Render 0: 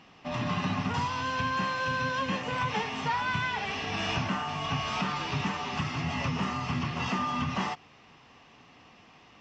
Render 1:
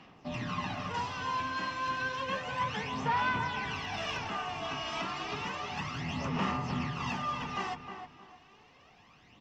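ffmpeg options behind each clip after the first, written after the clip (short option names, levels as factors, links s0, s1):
-filter_complex "[0:a]acrossover=split=210|2300[s0][s1][s2];[s0]asoftclip=type=tanh:threshold=0.0119[s3];[s3][s1][s2]amix=inputs=3:normalize=0,aphaser=in_gain=1:out_gain=1:delay=3.1:decay=0.57:speed=0.31:type=sinusoidal,asplit=2[s4][s5];[s5]adelay=311,lowpass=f=2000:p=1,volume=0.447,asplit=2[s6][s7];[s7]adelay=311,lowpass=f=2000:p=1,volume=0.31,asplit=2[s8][s9];[s9]adelay=311,lowpass=f=2000:p=1,volume=0.31,asplit=2[s10][s11];[s11]adelay=311,lowpass=f=2000:p=1,volume=0.31[s12];[s4][s6][s8][s10][s12]amix=inputs=5:normalize=0,volume=0.501"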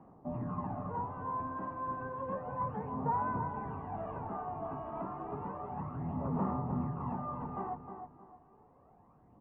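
-af "lowpass=f=1000:w=0.5412,lowpass=f=1000:w=1.3066"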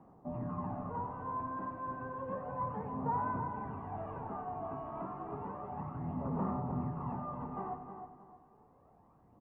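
-af "aecho=1:1:92|184|276|368|460:0.316|0.152|0.0729|0.035|0.0168,volume=0.794"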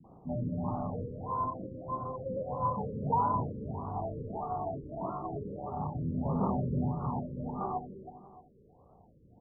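-filter_complex "[0:a]adynamicsmooth=sensitivity=5.5:basefreq=1000,acrossover=split=260[s0][s1];[s1]adelay=40[s2];[s0][s2]amix=inputs=2:normalize=0,afftfilt=real='re*lt(b*sr/1024,550*pow(1500/550,0.5+0.5*sin(2*PI*1.6*pts/sr)))':imag='im*lt(b*sr/1024,550*pow(1500/550,0.5+0.5*sin(2*PI*1.6*pts/sr)))':win_size=1024:overlap=0.75,volume=2.24"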